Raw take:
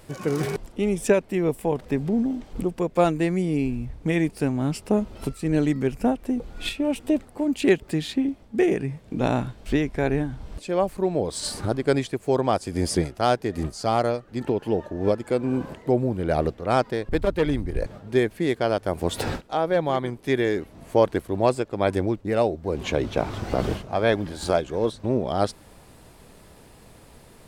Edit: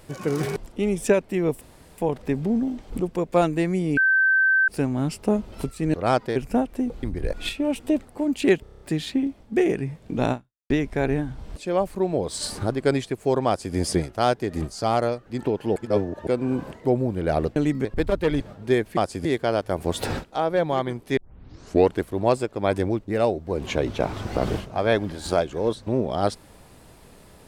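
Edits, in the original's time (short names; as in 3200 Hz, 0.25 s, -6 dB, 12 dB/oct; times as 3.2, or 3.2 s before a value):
1.61 insert room tone 0.37 s
3.6–4.31 bleep 1550 Hz -15.5 dBFS
5.57–5.86 swap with 16.58–17
7.83 stutter 0.03 s, 7 plays
9.34–9.72 fade out exponential
12.49–12.77 copy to 18.42
14.78–15.29 reverse
17.55–17.85 move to 6.53
20.34 tape start 0.80 s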